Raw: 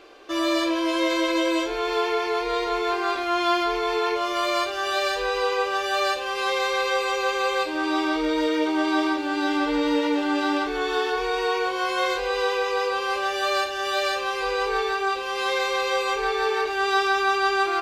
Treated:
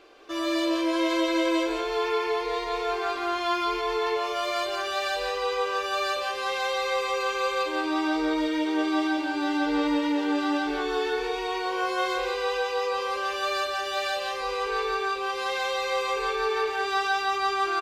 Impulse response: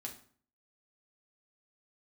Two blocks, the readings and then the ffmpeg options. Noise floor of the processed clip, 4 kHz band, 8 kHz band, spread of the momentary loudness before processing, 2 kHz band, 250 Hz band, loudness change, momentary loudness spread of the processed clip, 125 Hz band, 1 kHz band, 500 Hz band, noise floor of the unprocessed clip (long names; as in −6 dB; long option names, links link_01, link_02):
−31 dBFS, −3.5 dB, −3.5 dB, 3 LU, −4.0 dB, −1.5 dB, −3.0 dB, 3 LU, can't be measured, −3.0 dB, −3.0 dB, −29 dBFS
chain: -af "aecho=1:1:170:0.631,volume=-5dB"